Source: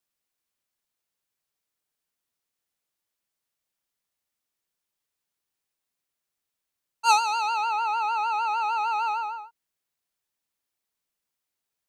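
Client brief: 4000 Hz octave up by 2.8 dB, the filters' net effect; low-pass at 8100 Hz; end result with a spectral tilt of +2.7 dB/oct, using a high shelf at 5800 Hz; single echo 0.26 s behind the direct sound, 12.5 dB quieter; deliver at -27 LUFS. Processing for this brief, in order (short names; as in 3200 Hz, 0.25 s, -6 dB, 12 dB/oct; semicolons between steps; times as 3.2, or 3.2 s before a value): LPF 8100 Hz; bell 4000 Hz +5 dB; high shelf 5800 Hz -4.5 dB; echo 0.26 s -12.5 dB; gain -2.5 dB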